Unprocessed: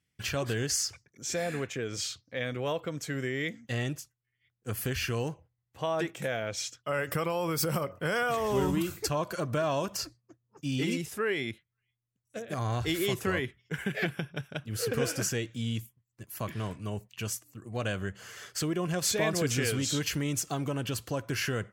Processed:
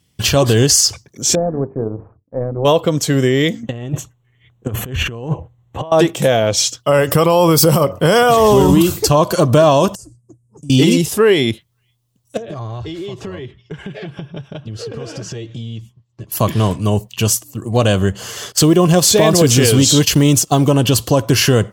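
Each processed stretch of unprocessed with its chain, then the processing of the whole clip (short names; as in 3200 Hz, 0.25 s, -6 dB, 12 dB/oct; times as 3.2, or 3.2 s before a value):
1.35–2.65 notches 50/100/150/200/250/300/350/400/450 Hz + power-law curve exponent 1.4 + Gaussian blur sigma 8.8 samples
3.63–5.92 running mean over 9 samples + negative-ratio compressor -39 dBFS, ratio -0.5
9.95–10.7 EQ curve 160 Hz 0 dB, 4000 Hz -27 dB, 8600 Hz +6 dB, 15000 Hz -8 dB + compressor 3:1, threshold -56 dBFS + LPF 8800 Hz
12.37–16.32 air absorption 140 m + notch comb 250 Hz + compressor, threshold -45 dBFS
18.52–20.71 block floating point 7-bit + gate -37 dBFS, range -13 dB
whole clip: band shelf 1800 Hz -8.5 dB 1.1 oct; maximiser +21 dB; gain -1 dB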